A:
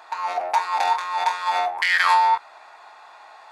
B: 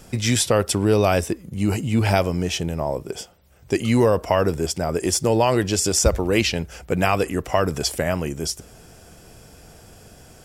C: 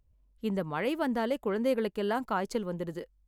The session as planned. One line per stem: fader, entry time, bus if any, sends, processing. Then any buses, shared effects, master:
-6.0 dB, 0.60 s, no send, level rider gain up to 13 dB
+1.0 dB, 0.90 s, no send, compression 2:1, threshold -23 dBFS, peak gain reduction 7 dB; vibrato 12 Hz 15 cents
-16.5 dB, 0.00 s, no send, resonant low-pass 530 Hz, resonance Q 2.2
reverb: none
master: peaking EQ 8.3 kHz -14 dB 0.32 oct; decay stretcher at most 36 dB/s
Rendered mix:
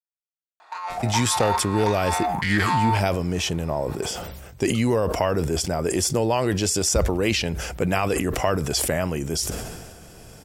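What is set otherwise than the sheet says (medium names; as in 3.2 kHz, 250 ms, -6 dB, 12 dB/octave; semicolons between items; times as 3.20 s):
stem A: missing level rider gain up to 13 dB; stem C: muted; master: missing peaking EQ 8.3 kHz -14 dB 0.32 oct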